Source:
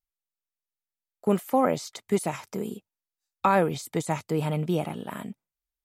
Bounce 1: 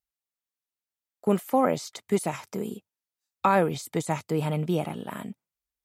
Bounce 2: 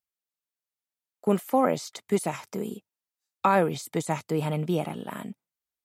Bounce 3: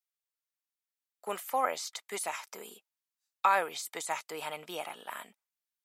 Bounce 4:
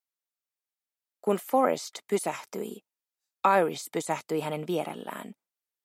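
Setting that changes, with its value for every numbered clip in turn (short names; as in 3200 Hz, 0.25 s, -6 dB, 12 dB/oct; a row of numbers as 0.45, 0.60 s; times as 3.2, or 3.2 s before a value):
HPF, cutoff: 45, 110, 940, 290 Hz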